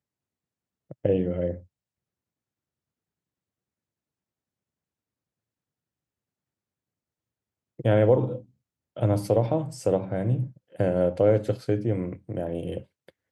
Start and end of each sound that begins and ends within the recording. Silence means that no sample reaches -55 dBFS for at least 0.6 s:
0.9–1.66

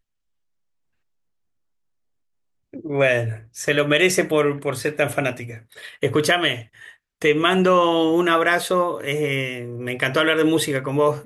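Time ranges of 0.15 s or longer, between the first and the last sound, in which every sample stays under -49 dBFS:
6.96–7.21

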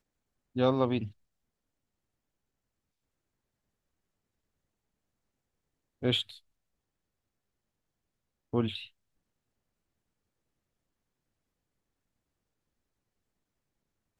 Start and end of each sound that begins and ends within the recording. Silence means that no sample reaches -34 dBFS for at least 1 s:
6.03–6.22
8.54–8.76

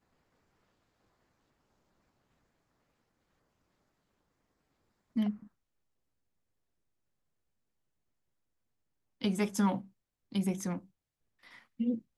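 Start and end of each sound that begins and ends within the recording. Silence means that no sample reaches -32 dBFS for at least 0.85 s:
5.17–5.31
9.24–10.77

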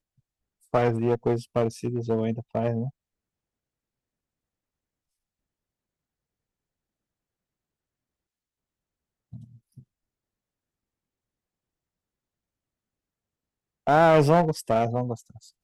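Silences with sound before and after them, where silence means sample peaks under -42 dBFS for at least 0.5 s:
2.9–9.33
9.79–13.87

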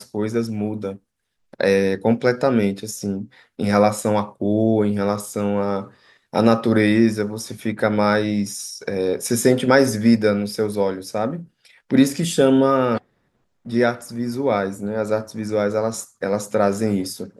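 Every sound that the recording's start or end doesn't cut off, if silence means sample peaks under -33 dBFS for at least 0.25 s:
1.54–3.25
3.59–5.87
6.34–11.43
11.91–12.98

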